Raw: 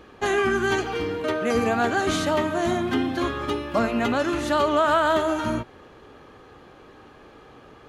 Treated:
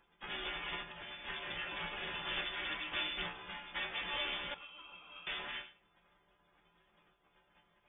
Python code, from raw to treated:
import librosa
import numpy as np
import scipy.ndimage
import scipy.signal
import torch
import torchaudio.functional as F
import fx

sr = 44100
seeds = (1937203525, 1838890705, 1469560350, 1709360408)

p1 = fx.lower_of_two(x, sr, delay_ms=3.4)
p2 = fx.spec_gate(p1, sr, threshold_db=-20, keep='weak')
p3 = fx.high_shelf(p2, sr, hz=2100.0, db=-6.0)
p4 = fx.resonator_bank(p3, sr, root=49, chord='minor', decay_s=0.22)
p5 = fx.vowel_filter(p4, sr, vowel='u', at=(4.54, 5.27))
p6 = p5 + fx.echo_single(p5, sr, ms=116, db=-18.0, dry=0)
p7 = fx.freq_invert(p6, sr, carrier_hz=3500)
y = F.gain(torch.from_numpy(p7), 11.5).numpy()